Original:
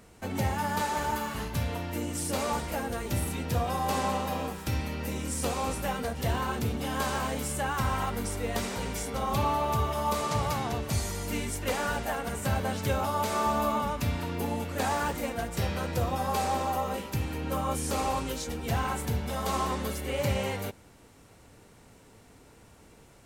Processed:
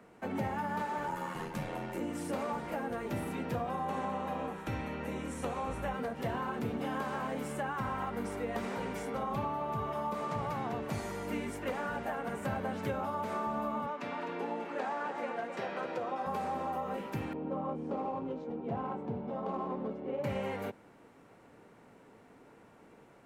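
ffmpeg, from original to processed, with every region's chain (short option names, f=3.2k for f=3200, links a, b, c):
-filter_complex "[0:a]asettb=1/sr,asplit=3[a][b][c];[a]atrim=end=1.074[d];[b]atrim=start=1.07:end=2,asetpts=PTS-STARTPTS,afade=t=in:d=0.004:c=qsin,afade=t=out:st=0.926:d=0.004:c=qsin,equalizer=f=8.3k:t=o:w=1.2:g=7.5,aeval=exprs='val(0)*sin(2*PI*42*n/s)':c=same,aecho=1:1:5.6:0.42,atrim=end_sample=41013[e];[c]atrim=start=1.996[f];[d][e]acrossfade=d=0.004:c1=hsin:c2=qsin[g];[g][f]acrossfade=d=0.004:c1=qsin:c2=hsin,asettb=1/sr,asplit=3[h][i][j];[h]atrim=end=3.704[k];[i]atrim=start=3.7:end=5.94,asetpts=PTS-STARTPTS,afade=t=in:d=0.004:c=qsin,afade=t=out:st=2.236:d=0.004:c=qsin,lowpass=12k,bandreject=f=4.9k:w=5.9,asubboost=boost=7:cutoff=99[l];[j]atrim=start=5.936[m];[k][l]acrossfade=d=0.004:c1=hsin:c2=qsin[n];[n][m]acrossfade=d=0.004:c1=qsin:c2=hsin,asettb=1/sr,asplit=3[o][p][q];[o]atrim=end=13.864[r];[p]atrim=start=13.86:end=16.26,asetpts=PTS-STARTPTS,afade=t=in:d=0.004:c=qsin,afade=t=out:st=2.396:d=0.004:c=qsin,highpass=320,lowpass=6.2k,aecho=1:1:257:0.335,atrim=end_sample=105840[s];[q]atrim=start=16.256[t];[r][s]acrossfade=d=0.004:c1=hsin:c2=qsin[u];[u][t]acrossfade=d=0.004:c1=qsin:c2=hsin,asettb=1/sr,asplit=3[v][w][x];[v]atrim=end=17.334[y];[w]atrim=start=17.33:end=20.24,asetpts=PTS-STARTPTS,afade=t=in:d=0.004:c=qsin,afade=t=out:st=2.906:d=0.004:c=qsin,equalizer=f=1.7k:t=o:w=1:g=-12,adynamicsmooth=sensitivity=1.5:basefreq=1.5k,highpass=110[z];[x]atrim=start=20.236[aa];[y][z]acrossfade=d=0.004:c1=hsin:c2=qsin[ab];[ab][aa]acrossfade=d=0.004:c1=qsin:c2=hsin,acrossover=split=150 2400:gain=0.158 1 0.178[ac][ad][ae];[ac][ad][ae]amix=inputs=3:normalize=0,acrossover=split=200[af][ag];[ag]acompressor=threshold=-33dB:ratio=6[ah];[af][ah]amix=inputs=2:normalize=0,equalizer=f=75:t=o:w=0.29:g=-7"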